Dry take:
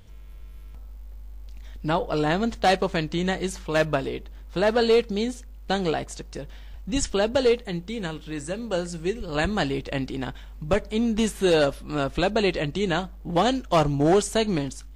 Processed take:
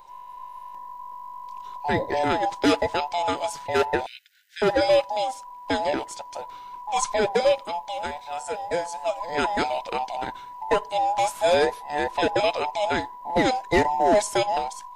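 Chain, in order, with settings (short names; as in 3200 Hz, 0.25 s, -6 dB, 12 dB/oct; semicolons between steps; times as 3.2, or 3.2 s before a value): band inversion scrambler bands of 1000 Hz; 4.06–4.62 brick-wall FIR high-pass 1400 Hz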